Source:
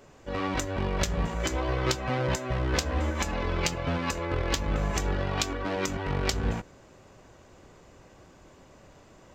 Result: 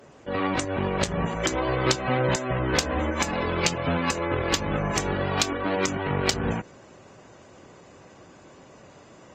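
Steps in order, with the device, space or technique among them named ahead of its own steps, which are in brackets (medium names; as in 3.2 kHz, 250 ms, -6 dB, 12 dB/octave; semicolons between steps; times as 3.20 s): noise-suppressed video call (high-pass 110 Hz 12 dB/octave; spectral gate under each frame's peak -30 dB strong; trim +5 dB; Opus 24 kbps 48 kHz)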